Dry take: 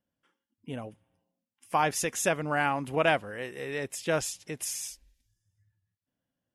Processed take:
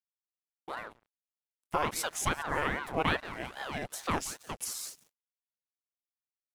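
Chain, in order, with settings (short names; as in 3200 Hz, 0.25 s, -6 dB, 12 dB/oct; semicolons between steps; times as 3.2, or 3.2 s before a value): frequency-shifting echo 0.177 s, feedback 41%, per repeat +64 Hz, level -17.5 dB; in parallel at -2 dB: compressor, threshold -34 dBFS, peak gain reduction 14 dB; on the sum: crossover distortion -45 dBFS; expander -57 dBFS; ring modulator with a swept carrier 730 Hz, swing 80%, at 2.5 Hz; gain -2.5 dB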